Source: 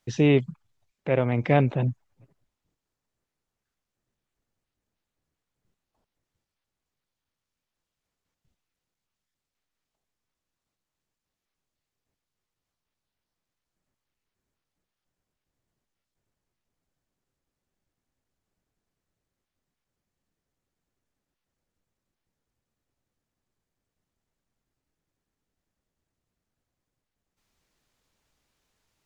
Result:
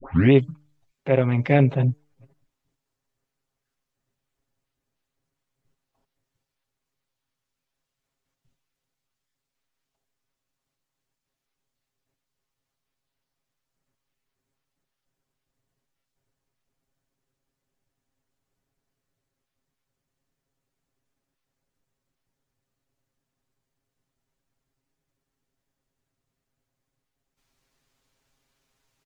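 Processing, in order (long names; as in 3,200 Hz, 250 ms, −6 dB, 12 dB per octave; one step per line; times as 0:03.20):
turntable start at the beginning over 0.32 s
comb filter 7.4 ms, depth 78%
hum removal 148.7 Hz, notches 5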